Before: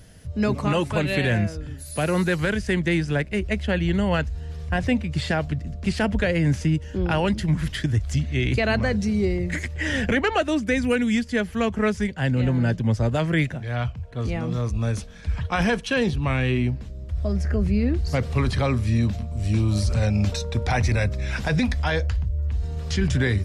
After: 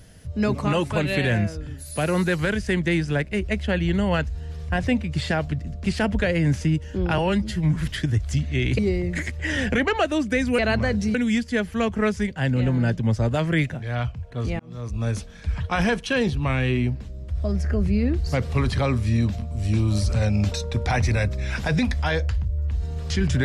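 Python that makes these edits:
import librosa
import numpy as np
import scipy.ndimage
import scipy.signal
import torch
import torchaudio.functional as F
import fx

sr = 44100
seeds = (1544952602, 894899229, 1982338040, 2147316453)

y = fx.edit(x, sr, fx.stretch_span(start_s=7.18, length_s=0.39, factor=1.5),
    fx.move(start_s=8.59, length_s=0.56, to_s=10.95),
    fx.fade_in_span(start_s=14.4, length_s=0.5), tone=tone)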